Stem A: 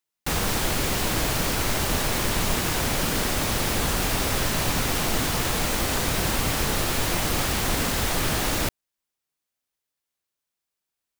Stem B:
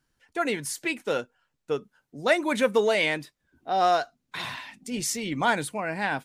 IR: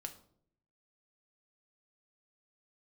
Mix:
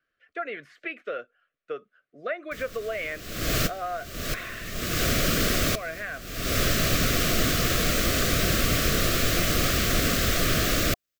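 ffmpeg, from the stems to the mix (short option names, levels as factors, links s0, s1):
-filter_complex "[0:a]adelay=2250,volume=1.19[s0];[1:a]acrossover=split=3000[s1][s2];[s2]acompressor=threshold=0.00447:ratio=4:attack=1:release=60[s3];[s1][s3]amix=inputs=2:normalize=0,acrossover=split=460 3100:gain=0.126 1 0.0631[s4][s5][s6];[s4][s5][s6]amix=inputs=3:normalize=0,acompressor=threshold=0.0251:ratio=3,volume=1.33,asplit=3[s7][s8][s9];[s7]atrim=end=4.89,asetpts=PTS-STARTPTS,afade=t=out:st=4.886:d=0.004:c=hsin[s10];[s8]atrim=start=4.89:end=5.75,asetpts=PTS-STARTPTS,volume=0[s11];[s9]atrim=start=5.75,asetpts=PTS-STARTPTS,afade=t=in:d=0.004:c=hsin[s12];[s10][s11][s12]concat=n=3:v=0:a=1,asplit=2[s13][s14];[s14]apad=whole_len=592920[s15];[s0][s15]sidechaincompress=threshold=0.00251:ratio=6:attack=16:release=263[s16];[s16][s13]amix=inputs=2:normalize=0,asuperstop=centerf=890:order=8:qfactor=2.3,equalizer=f=9700:w=4.6:g=-10.5"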